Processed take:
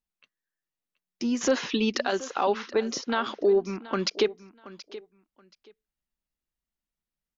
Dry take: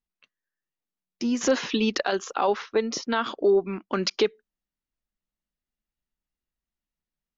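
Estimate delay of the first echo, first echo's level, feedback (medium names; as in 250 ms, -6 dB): 727 ms, -17.0 dB, 20%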